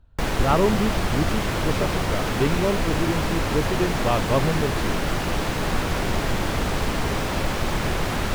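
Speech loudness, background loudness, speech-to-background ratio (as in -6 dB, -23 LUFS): -26.0 LUFS, -25.0 LUFS, -1.0 dB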